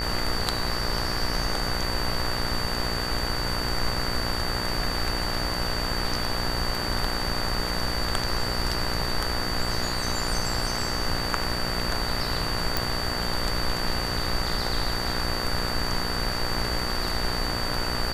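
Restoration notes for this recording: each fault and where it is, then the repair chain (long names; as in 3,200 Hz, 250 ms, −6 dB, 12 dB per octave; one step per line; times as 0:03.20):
mains buzz 60 Hz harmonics 34 −32 dBFS
whistle 4,600 Hz −31 dBFS
0:12.77: click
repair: click removal
hum removal 60 Hz, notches 34
notch filter 4,600 Hz, Q 30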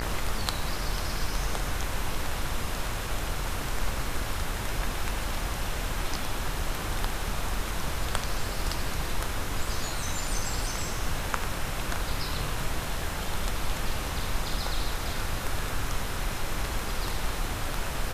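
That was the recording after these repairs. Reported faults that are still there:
none of them is left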